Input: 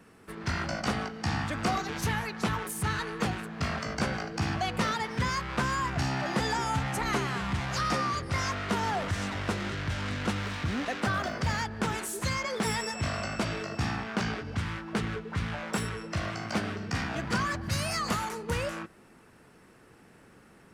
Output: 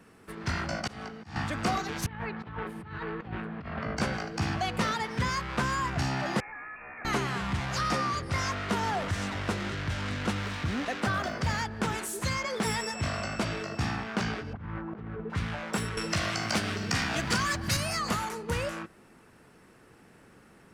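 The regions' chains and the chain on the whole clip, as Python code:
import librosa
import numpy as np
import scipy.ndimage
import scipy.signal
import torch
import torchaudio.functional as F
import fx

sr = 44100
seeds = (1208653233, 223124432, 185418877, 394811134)

y = fx.chain(x, sr, fx.auto_swell(attack_ms=250.0),
    fx.band_widen(depth_pct=40), at=(0.61, 1.36))
y = fx.chain(y, sr, fx.over_compress(threshold_db=-34.0, ratio=-0.5),
    fx.air_absorb(metres=430.0), at=(2.06, 3.97))
y = fx.chain(y, sr, fx.level_steps(step_db=20),
    fx.highpass(hz=470.0, slope=6),
    fx.freq_invert(carrier_hz=2600), at=(6.4, 7.05))
y = fx.chain(y, sr, fx.lowpass(hz=1200.0, slope=12),
    fx.over_compress(threshold_db=-38.0, ratio=-1.0), at=(14.53, 15.3))
y = fx.chain(y, sr, fx.high_shelf(hz=2400.0, db=9.5),
    fx.band_squash(depth_pct=70), at=(15.97, 17.77))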